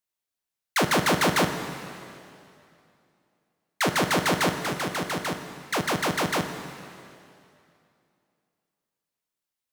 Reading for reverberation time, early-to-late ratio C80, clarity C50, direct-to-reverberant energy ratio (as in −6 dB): 2.6 s, 8.5 dB, 8.0 dB, 6.5 dB